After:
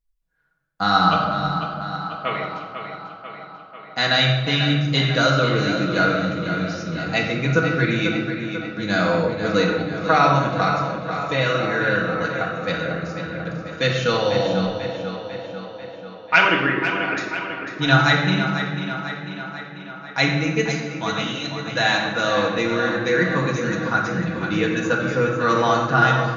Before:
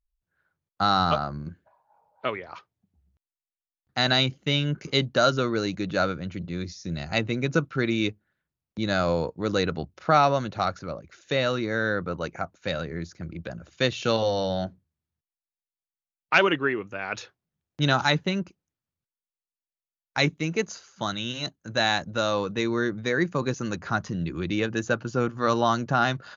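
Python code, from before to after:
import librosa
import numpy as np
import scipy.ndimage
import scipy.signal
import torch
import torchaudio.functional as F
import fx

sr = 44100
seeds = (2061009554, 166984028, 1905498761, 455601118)

y = x + 0.47 * np.pad(x, (int(6.2 * sr / 1000.0), 0))[:len(x)]
y = fx.room_shoebox(y, sr, seeds[0], volume_m3=1100.0, walls='mixed', distance_m=1.8)
y = fx.dynamic_eq(y, sr, hz=1800.0, q=0.81, threshold_db=-33.0, ratio=4.0, max_db=4)
y = fx.echo_tape(y, sr, ms=494, feedback_pct=67, wet_db=-8, lp_hz=5700.0, drive_db=0.0, wow_cents=27)
y = y * 10.0 ** (-1.0 / 20.0)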